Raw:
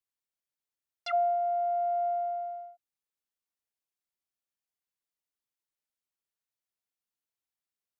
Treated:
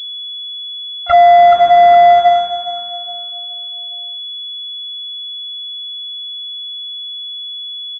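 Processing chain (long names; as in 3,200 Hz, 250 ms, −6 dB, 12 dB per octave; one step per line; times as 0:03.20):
variable-slope delta modulation 64 kbit/s
flanger 0.31 Hz, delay 5.2 ms, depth 4.2 ms, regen −79%
low-pass that shuts in the quiet parts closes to 1,100 Hz, open at −30.5 dBFS
noise gate −40 dBFS, range −16 dB
high-pass filter 660 Hz 24 dB per octave
repeating echo 416 ms, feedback 37%, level −12 dB
boost into a limiter +33.5 dB
switching amplifier with a slow clock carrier 3,400 Hz
level −1 dB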